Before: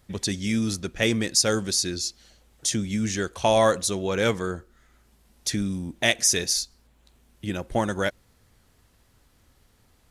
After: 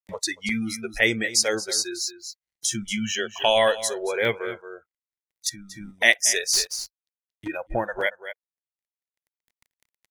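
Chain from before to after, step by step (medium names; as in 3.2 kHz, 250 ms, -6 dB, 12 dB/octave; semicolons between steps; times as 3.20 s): crossover distortion -50.5 dBFS; 2.85–3.79 s: peaking EQ 3 kHz +14 dB 0.28 oct; spectral noise reduction 29 dB; delay 229 ms -15.5 dB; 5.49–5.93 s: compression 10:1, threshold -41 dBFS, peak gain reduction 13.5 dB; graphic EQ with 31 bands 250 Hz -5 dB, 1.25 kHz -7 dB, 2 kHz +11 dB; 6.53–7.48 s: waveshaping leveller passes 2; upward compressor, threshold -23 dBFS; crackling interface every 0.94 s, samples 128, zero, from 0.49 s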